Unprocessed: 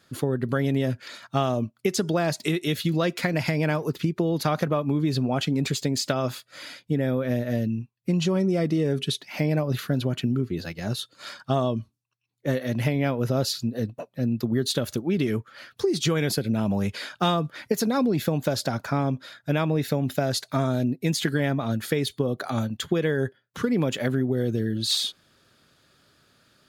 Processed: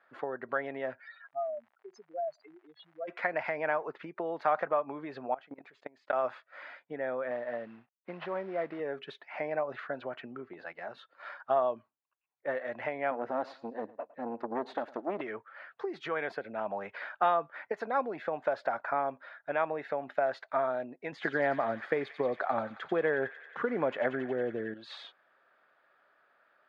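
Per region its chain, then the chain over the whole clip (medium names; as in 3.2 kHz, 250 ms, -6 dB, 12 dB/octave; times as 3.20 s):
1.00–3.07 s: spectral contrast enhancement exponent 3.9 + high-pass 1.5 kHz 6 dB/octave + crackle 160 per s -44 dBFS
5.34–6.13 s: peaking EQ 280 Hz +2 dB 0.23 oct + level held to a coarse grid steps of 22 dB
7.31–8.80 s: CVSD coder 32 kbps + Chebyshev band-pass 130–4300 Hz
10.53–10.98 s: hum notches 50/100/150/200/250/300 Hz + compression 2:1, threshold -30 dBFS
13.11–15.21 s: peaking EQ 280 Hz +13 dB 0.91 oct + valve stage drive 14 dB, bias 0.6 + feedback delay 107 ms, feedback 28%, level -20 dB
21.12–24.74 s: bass shelf 480 Hz +10 dB + feedback echo behind a high-pass 91 ms, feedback 79%, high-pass 2.5 kHz, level -6.5 dB
whole clip: Chebyshev band-pass 690–1900 Hz, order 2; tilt EQ -2 dB/octave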